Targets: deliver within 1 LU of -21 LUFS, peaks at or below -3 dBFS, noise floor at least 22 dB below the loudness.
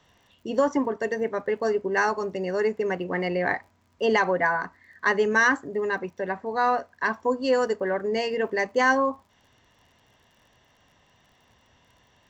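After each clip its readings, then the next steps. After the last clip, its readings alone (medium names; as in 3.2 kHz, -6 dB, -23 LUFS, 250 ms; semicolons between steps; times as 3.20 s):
tick rate 42 per s; loudness -25.0 LUFS; peak level -10.0 dBFS; loudness target -21.0 LUFS
-> de-click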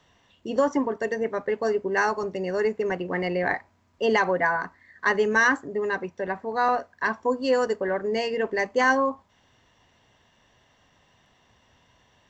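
tick rate 0.16 per s; loudness -25.0 LUFS; peak level -10.0 dBFS; loudness target -21.0 LUFS
-> trim +4 dB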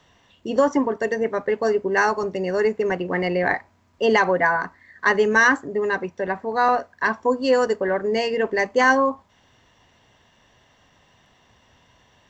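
loudness -21.0 LUFS; peak level -6.0 dBFS; noise floor -60 dBFS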